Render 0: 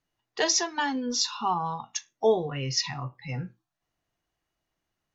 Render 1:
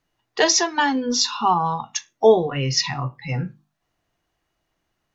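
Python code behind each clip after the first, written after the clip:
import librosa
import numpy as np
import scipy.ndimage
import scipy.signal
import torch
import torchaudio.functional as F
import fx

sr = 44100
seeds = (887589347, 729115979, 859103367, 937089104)

y = fx.high_shelf(x, sr, hz=4800.0, db=-4.5)
y = fx.hum_notches(y, sr, base_hz=50, count=5)
y = y * 10.0 ** (8.5 / 20.0)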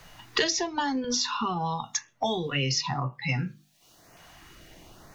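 y = fx.filter_lfo_notch(x, sr, shape='saw_up', hz=0.96, low_hz=270.0, high_hz=3900.0, q=1.2)
y = fx.band_squash(y, sr, depth_pct=100)
y = y * 10.0 ** (-5.0 / 20.0)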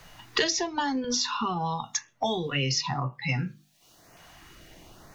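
y = x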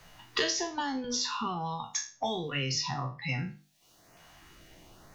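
y = fx.spec_trails(x, sr, decay_s=0.36)
y = y * 10.0 ** (-5.5 / 20.0)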